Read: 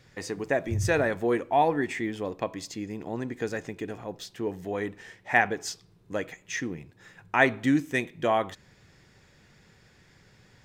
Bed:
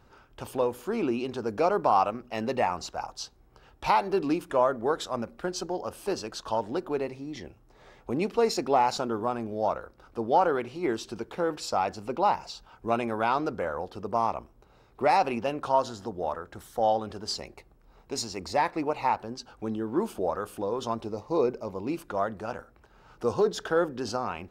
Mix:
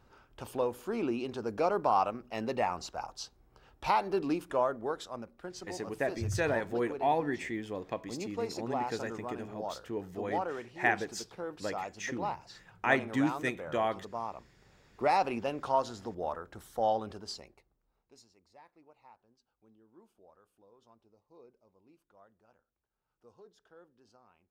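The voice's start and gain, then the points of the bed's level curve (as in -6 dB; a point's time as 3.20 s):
5.50 s, -6.0 dB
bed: 4.49 s -4.5 dB
5.33 s -11.5 dB
14.50 s -11.5 dB
15.05 s -4.5 dB
17.09 s -4.5 dB
18.42 s -32 dB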